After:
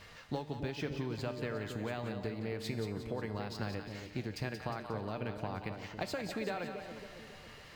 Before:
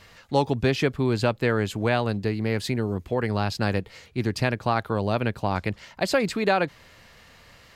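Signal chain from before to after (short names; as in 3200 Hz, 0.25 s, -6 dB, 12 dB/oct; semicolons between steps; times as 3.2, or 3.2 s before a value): compressor 12:1, threshold -32 dBFS, peak gain reduction 17 dB; resonator 150 Hz, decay 1.1 s, harmonics all, mix 70%; split-band echo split 730 Hz, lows 0.276 s, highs 0.179 s, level -7 dB; decimation joined by straight lines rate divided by 2×; gain +7 dB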